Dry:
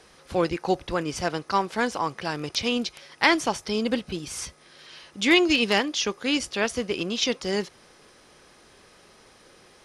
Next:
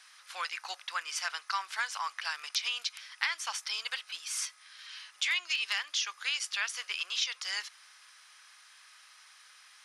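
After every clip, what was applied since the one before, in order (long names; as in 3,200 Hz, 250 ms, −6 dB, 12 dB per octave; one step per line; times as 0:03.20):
high-pass filter 1,200 Hz 24 dB per octave
downward compressor 6 to 1, threshold −28 dBFS, peak gain reduction 12 dB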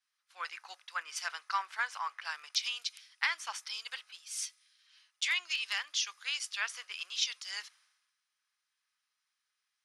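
multiband upward and downward expander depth 100%
level −4 dB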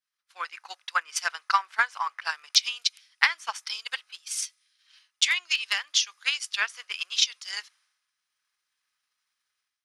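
automatic gain control gain up to 9 dB
transient designer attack +9 dB, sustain −5 dB
level −5.5 dB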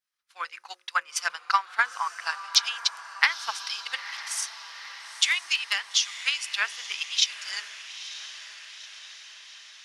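mains-hum notches 60/120/180/240/300/360/420/480/540 Hz
feedback delay with all-pass diffusion 931 ms, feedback 60%, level −13 dB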